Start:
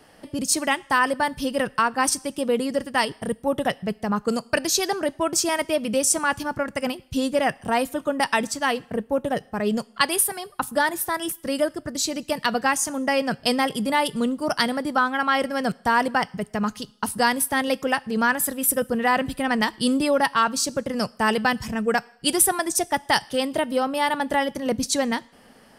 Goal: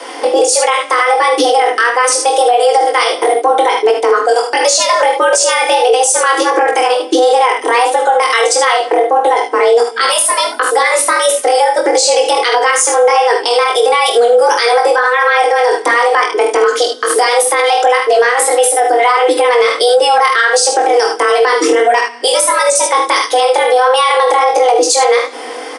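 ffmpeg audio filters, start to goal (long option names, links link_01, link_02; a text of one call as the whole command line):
ffmpeg -i in.wav -filter_complex "[0:a]equalizer=frequency=84:width=5.5:gain=12,aecho=1:1:3.8:0.53,acompressor=threshold=-28dB:ratio=6,flanger=delay=18:depth=5.6:speed=1.5,afreqshift=240,asplit=2[link_01][link_02];[link_02]aecho=0:1:46|76:0.316|0.299[link_03];[link_01][link_03]amix=inputs=2:normalize=0,aresample=22050,aresample=44100,alimiter=level_in=28.5dB:limit=-1dB:release=50:level=0:latency=1,volume=-1dB" out.wav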